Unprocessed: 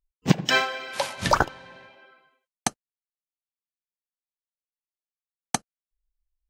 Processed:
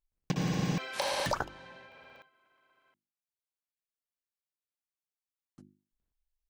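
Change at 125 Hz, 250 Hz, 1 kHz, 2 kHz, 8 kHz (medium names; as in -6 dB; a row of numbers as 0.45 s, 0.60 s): -5.5 dB, -6.5 dB, -11.0 dB, -12.5 dB, -11.5 dB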